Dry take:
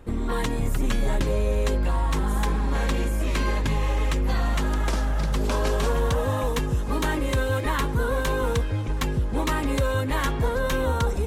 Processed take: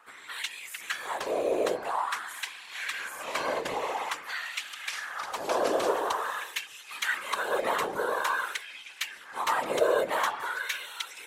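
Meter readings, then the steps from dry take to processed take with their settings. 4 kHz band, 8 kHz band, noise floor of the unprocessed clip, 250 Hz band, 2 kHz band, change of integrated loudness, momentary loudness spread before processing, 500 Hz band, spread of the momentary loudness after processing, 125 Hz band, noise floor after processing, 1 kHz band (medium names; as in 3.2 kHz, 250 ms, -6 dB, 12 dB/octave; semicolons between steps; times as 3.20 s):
-1.0 dB, -2.5 dB, -27 dBFS, -14.0 dB, 0.0 dB, -5.5 dB, 2 LU, -2.5 dB, 10 LU, -32.0 dB, -48 dBFS, -0.5 dB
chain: LFO high-pass sine 0.48 Hz 520–2600 Hz; whisper effect; trim -3 dB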